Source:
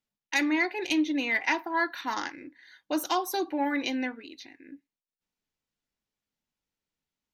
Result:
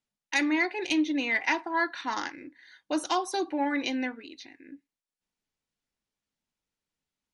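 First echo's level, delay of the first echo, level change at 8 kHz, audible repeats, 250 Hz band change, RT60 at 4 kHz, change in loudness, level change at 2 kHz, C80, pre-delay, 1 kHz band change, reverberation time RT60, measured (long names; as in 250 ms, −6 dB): no echo audible, no echo audible, 0.0 dB, no echo audible, 0.0 dB, no reverb audible, 0.0 dB, 0.0 dB, no reverb audible, no reverb audible, 0.0 dB, no reverb audible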